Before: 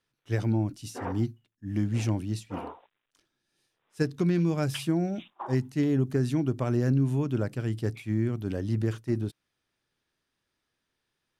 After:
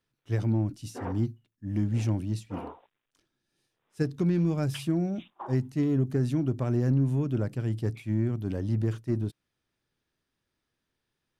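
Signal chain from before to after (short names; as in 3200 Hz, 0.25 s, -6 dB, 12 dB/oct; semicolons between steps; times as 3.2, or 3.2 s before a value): low shelf 430 Hz +6 dB; in parallel at -8 dB: soft clip -27.5 dBFS, distortion -6 dB; on the sum: gain -6 dB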